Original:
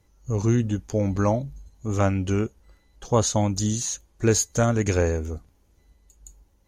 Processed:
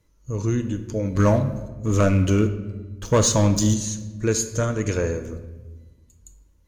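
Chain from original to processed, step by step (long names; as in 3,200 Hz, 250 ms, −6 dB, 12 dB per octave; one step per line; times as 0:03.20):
0:01.15–0:03.74: leveller curve on the samples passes 2
Butterworth band-reject 770 Hz, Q 4.6
rectangular room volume 750 cubic metres, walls mixed, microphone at 0.59 metres
level −2 dB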